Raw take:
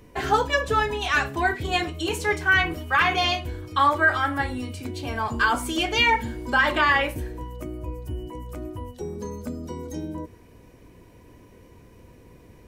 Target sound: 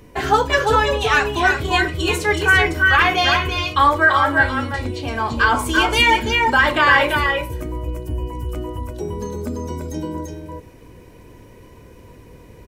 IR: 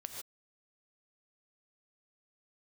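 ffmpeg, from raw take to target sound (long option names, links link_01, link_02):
-filter_complex "[0:a]asettb=1/sr,asplit=3[link_01][link_02][link_03];[link_01]atrim=end=4.064[link_04];[link_02]atrim=start=4.06:end=5.59,asetpts=PTS-STARTPTS,afade=type=in:duration=0.004:curve=qsin,afade=type=out:start_time=1.526:duration=0.004:curve=qsin,acrossover=split=6600[link_05][link_06];[link_06]acompressor=threshold=-60dB:ratio=4:attack=1:release=60[link_07];[link_05][link_07]amix=inputs=2:normalize=0[link_08];[link_03]atrim=start=5.586[link_09];[link_04][link_08]acrossfade=duration=0.004:curve1=hsin:curve2=qsin[link_10];[link_10][link_09]acrossfade=duration=0.004:curve1=qsin:curve2=hsin,aecho=1:1:339|341:0.501|0.422,volume=5dB"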